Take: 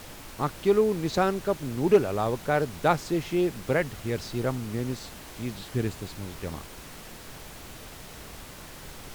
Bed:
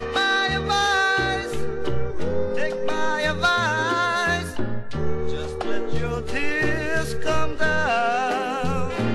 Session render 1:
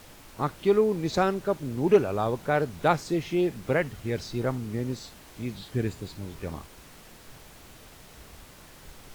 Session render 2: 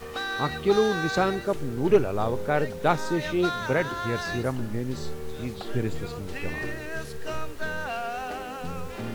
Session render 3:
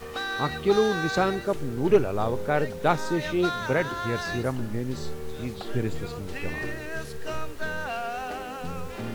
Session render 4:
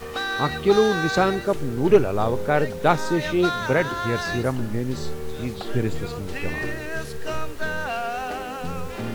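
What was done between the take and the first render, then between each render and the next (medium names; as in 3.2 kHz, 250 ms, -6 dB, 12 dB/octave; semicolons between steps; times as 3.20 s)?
noise print and reduce 6 dB
add bed -10.5 dB
no audible change
trim +4 dB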